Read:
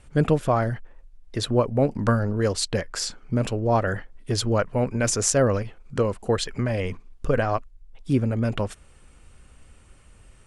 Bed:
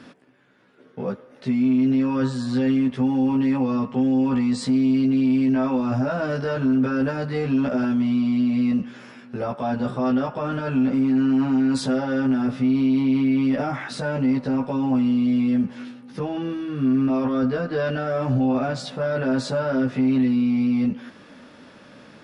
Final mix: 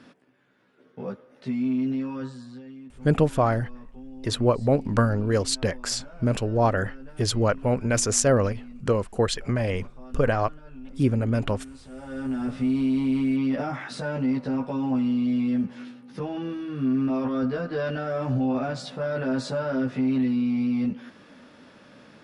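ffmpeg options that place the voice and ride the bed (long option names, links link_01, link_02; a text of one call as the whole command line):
ffmpeg -i stem1.wav -i stem2.wav -filter_complex "[0:a]adelay=2900,volume=0dB[link_01];[1:a]volume=13dB,afade=type=out:start_time=1.77:duration=0.86:silence=0.141254,afade=type=in:start_time=11.9:duration=0.7:silence=0.112202[link_02];[link_01][link_02]amix=inputs=2:normalize=0" out.wav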